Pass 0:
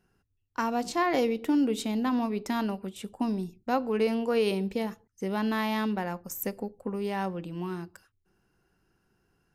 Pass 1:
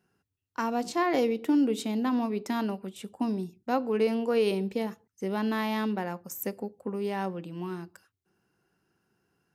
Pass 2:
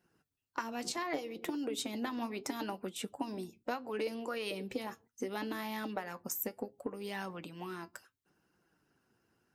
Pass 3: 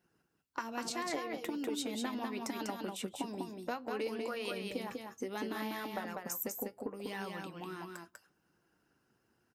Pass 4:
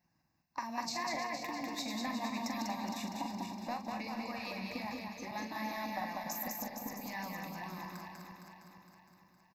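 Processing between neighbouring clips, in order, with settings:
HPF 110 Hz 12 dB/oct; dynamic EQ 350 Hz, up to +3 dB, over -34 dBFS, Q 1.1; gain -1.5 dB
harmonic-percussive split harmonic -14 dB; compressor 12:1, threshold -38 dBFS, peak gain reduction 13.5 dB; flange 0.7 Hz, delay 5.5 ms, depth 3.5 ms, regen +65%; gain +9 dB
echo 0.196 s -4 dB; gain -1.5 dB
regenerating reverse delay 0.231 s, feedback 68%, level -5.5 dB; fixed phaser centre 2100 Hz, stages 8; doubler 43 ms -9 dB; gain +2 dB

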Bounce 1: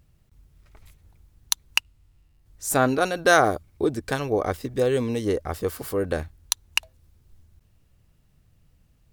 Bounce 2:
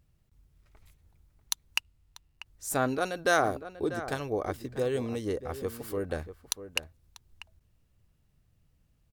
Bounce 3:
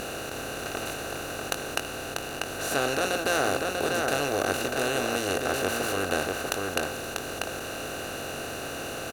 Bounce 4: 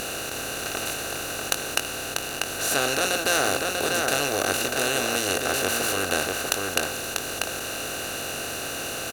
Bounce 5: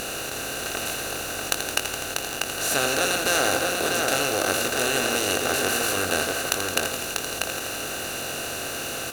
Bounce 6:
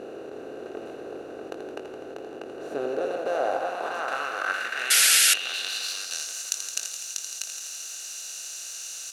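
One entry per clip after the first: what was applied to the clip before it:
outdoor echo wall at 110 m, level -12 dB; gain -7.5 dB
per-bin compression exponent 0.2; doubler 21 ms -8.5 dB; gain -6.5 dB
high shelf 2100 Hz +8.5 dB
lo-fi delay 83 ms, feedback 80%, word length 6-bit, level -8 dB
band-pass sweep 390 Hz -> 6300 Hz, 2.84–6.31; painted sound noise, 4.9–5.34, 1300–12000 Hz -21 dBFS; gain +2.5 dB

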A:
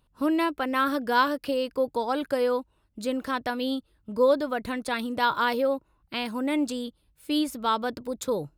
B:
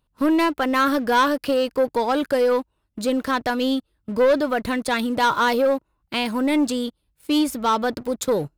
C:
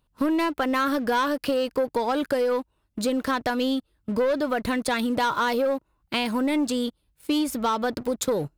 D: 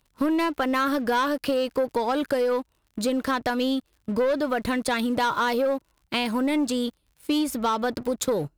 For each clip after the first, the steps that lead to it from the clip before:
sample leveller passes 2
compressor, threshold -22 dBFS, peak gain reduction 7.5 dB; gain +1 dB
crackle 65/s -48 dBFS

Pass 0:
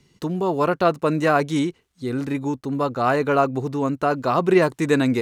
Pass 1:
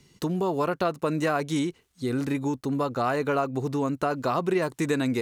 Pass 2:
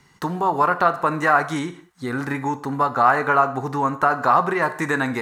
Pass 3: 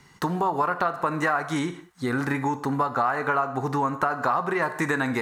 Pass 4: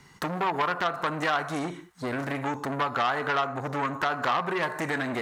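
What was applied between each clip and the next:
high shelf 5600 Hz +6 dB; compressor 3:1, threshold -24 dBFS, peak gain reduction 10 dB
band shelf 1200 Hz +12.5 dB; reverb, pre-delay 3 ms, DRR 9.5 dB
compressor 4:1, threshold -23 dBFS, peak gain reduction 11 dB; gain +1.5 dB
core saturation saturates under 2400 Hz

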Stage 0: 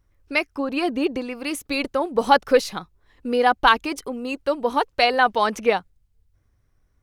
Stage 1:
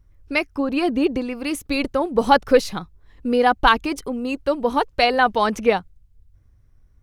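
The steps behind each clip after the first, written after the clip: low shelf 210 Hz +11 dB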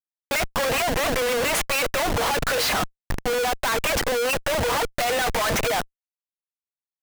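overdrive pedal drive 37 dB, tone 2500 Hz, clips at -1 dBFS; rippled Chebyshev high-pass 460 Hz, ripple 6 dB; Schmitt trigger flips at -25.5 dBFS; gain -6 dB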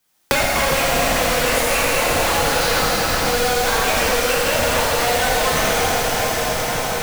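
on a send: thin delay 83 ms, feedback 76%, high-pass 4100 Hz, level -5 dB; on the sum: plate-style reverb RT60 3.9 s, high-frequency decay 0.9×, DRR -8.5 dB; three-band squash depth 100%; gain -4 dB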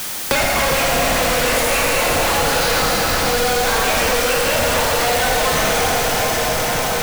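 zero-crossing step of -18 dBFS; gain -2 dB

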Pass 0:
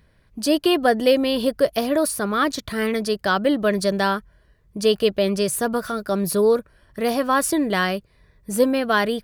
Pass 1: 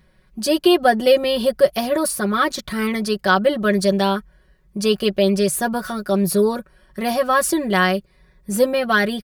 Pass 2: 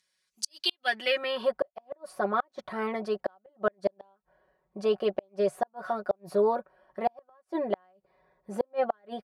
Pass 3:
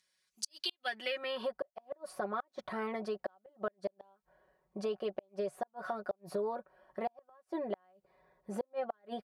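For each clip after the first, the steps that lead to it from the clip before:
comb 5.4 ms, depth 81%
band-pass sweep 6700 Hz -> 740 Hz, 0.39–1.66; flipped gate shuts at -17 dBFS, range -41 dB; gain +3 dB
compressor 3:1, threshold -34 dBFS, peak gain reduction 10.5 dB; gain -1.5 dB

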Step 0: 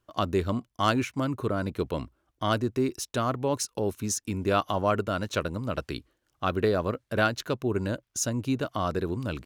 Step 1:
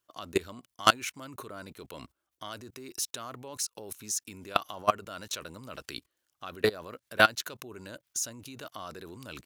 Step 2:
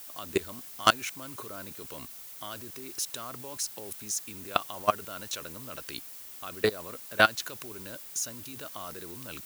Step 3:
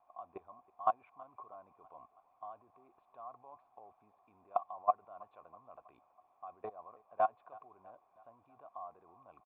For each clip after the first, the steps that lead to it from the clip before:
level quantiser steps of 22 dB; tilt +3 dB/oct; gain +5 dB
added noise violet -46 dBFS; requantised 8-bit, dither none
vocal tract filter a; feedback echo 0.324 s, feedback 57%, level -23 dB; gain +3 dB

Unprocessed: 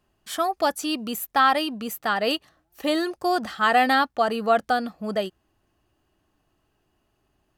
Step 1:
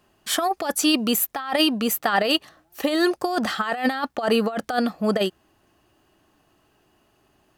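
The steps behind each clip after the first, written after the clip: low shelf 89 Hz -12 dB; in parallel at -0.5 dB: limiter -14.5 dBFS, peak gain reduction 7.5 dB; on the sum: negative-ratio compressor -20 dBFS, ratio -0.5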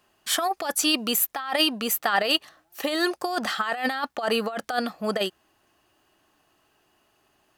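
low shelf 450 Hz -9.5 dB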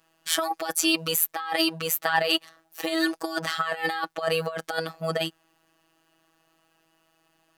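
robotiser 162 Hz; gain +1.5 dB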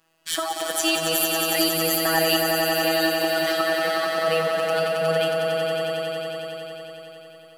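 soft clip -7 dBFS, distortion -20 dB; on a send: swelling echo 91 ms, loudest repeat 5, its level -6.5 dB; on the sum: non-linear reverb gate 90 ms rising, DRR 10.5 dB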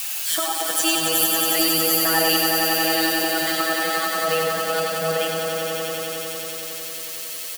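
switching spikes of -20 dBFS; echo 0.101 s -5.5 dB

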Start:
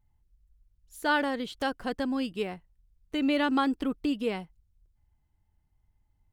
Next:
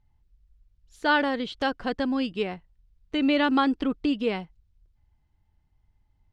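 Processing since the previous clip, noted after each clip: Chebyshev low-pass 4400 Hz, order 2; gain +4.5 dB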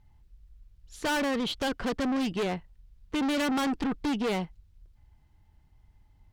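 tube stage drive 34 dB, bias 0.3; gain +8 dB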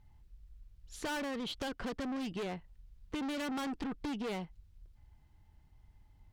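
compressor 4:1, threshold -36 dBFS, peak gain reduction 8.5 dB; gain -1.5 dB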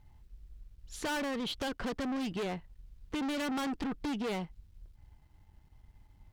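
sample leveller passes 1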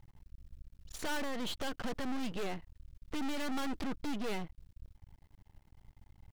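half-wave rectifier; gain +3 dB

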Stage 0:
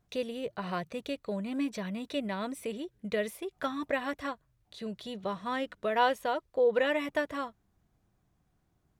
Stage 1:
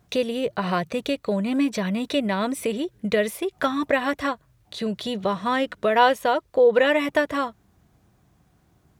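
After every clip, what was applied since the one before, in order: HPF 52 Hz; in parallel at -1 dB: compressor, threshold -38 dBFS, peak gain reduction 16.5 dB; on the sum: gain +7.5 dB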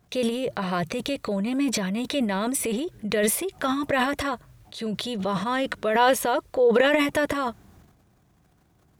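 dynamic EQ 9900 Hz, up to +5 dB, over -50 dBFS, Q 0.9; transient shaper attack -2 dB, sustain +11 dB; gain -2.5 dB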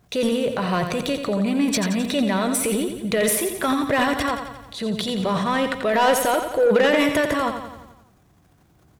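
soft clip -16 dBFS, distortion -16 dB; on a send: feedback echo 87 ms, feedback 56%, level -8 dB; on the sum: gain +4 dB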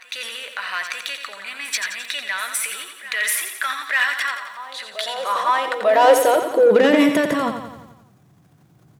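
high-pass sweep 1700 Hz -> 130 Hz, 4.88–7.64; reverse echo 0.895 s -17 dB

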